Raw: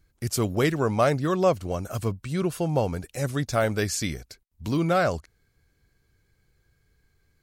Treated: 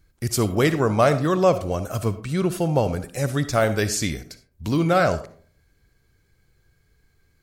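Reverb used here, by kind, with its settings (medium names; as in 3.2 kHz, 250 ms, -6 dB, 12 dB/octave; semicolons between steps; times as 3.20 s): algorithmic reverb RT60 0.48 s, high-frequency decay 0.45×, pre-delay 20 ms, DRR 11.5 dB; trim +3.5 dB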